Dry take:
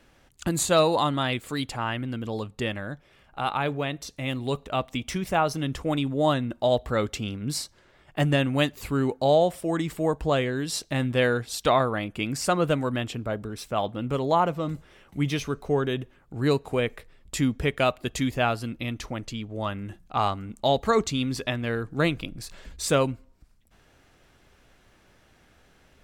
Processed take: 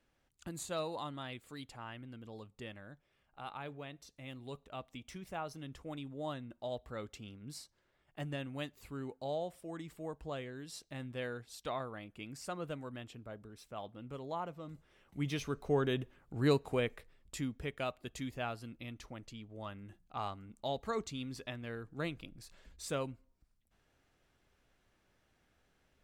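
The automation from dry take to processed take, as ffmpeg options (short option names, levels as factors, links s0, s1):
-af "volume=0.501,afade=t=in:st=14.69:d=1.21:silence=0.251189,afade=t=out:st=16.51:d=0.99:silence=0.354813"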